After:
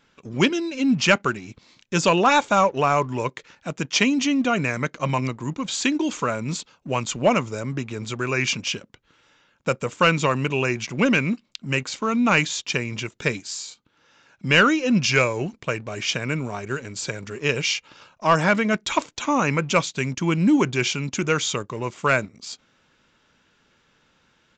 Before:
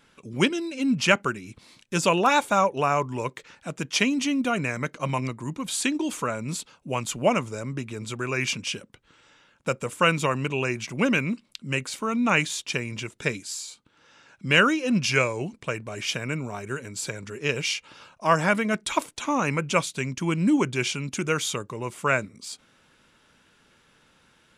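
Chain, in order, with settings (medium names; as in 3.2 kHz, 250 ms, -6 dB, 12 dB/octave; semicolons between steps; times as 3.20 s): waveshaping leveller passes 1; resampled via 16 kHz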